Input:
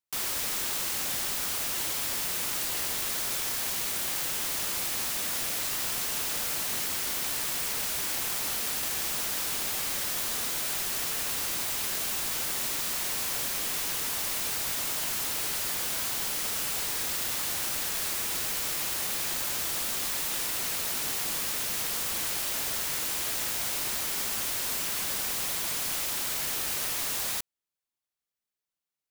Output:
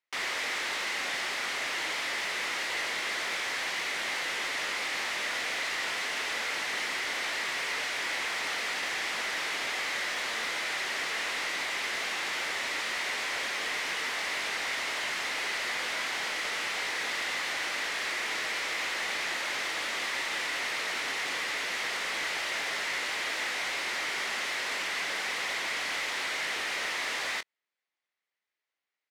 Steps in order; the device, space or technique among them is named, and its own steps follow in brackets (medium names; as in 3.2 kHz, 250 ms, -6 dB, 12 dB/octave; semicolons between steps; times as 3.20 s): intercom (band-pass 370–3900 Hz; peaking EQ 2 kHz +9 dB 0.43 oct; saturation -30 dBFS, distortion -18 dB; doubling 22 ms -12 dB); trim +4.5 dB